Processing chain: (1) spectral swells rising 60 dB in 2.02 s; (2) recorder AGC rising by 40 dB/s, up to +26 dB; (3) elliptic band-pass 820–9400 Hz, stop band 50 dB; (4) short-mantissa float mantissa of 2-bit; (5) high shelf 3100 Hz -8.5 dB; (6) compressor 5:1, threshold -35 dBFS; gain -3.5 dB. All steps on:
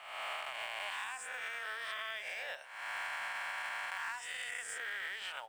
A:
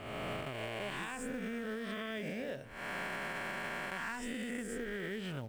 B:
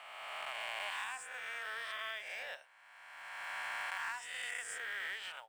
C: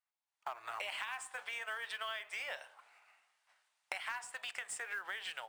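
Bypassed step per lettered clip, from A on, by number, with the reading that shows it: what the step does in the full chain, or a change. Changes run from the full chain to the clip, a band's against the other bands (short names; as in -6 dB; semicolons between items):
3, 500 Hz band +13.0 dB; 2, crest factor change +1.5 dB; 1, crest factor change +6.0 dB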